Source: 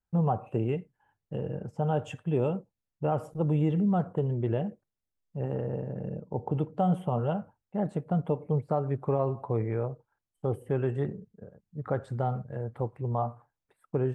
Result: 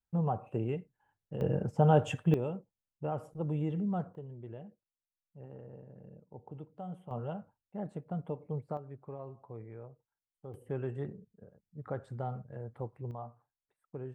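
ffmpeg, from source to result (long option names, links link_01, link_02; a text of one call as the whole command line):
ffmpeg -i in.wav -af "asetnsamples=nb_out_samples=441:pad=0,asendcmd='1.41 volume volume 4dB;2.34 volume volume -7.5dB;4.15 volume volume -17dB;7.11 volume volume -9.5dB;8.77 volume volume -17dB;10.54 volume volume -8dB;13.11 volume volume -14dB',volume=-5dB" out.wav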